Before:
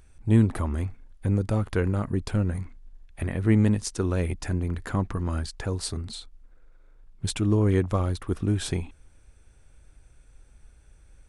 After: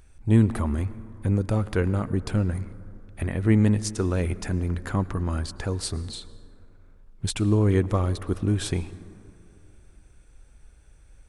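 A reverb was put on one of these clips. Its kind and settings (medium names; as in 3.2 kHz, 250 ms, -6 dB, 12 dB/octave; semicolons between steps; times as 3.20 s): plate-style reverb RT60 2.9 s, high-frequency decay 0.35×, pre-delay 95 ms, DRR 17 dB; trim +1 dB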